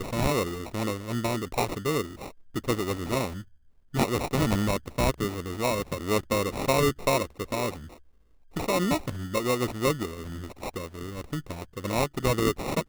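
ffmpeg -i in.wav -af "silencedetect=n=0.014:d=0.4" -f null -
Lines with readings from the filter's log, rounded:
silence_start: 3.42
silence_end: 3.94 | silence_duration: 0.52
silence_start: 7.94
silence_end: 8.56 | silence_duration: 0.62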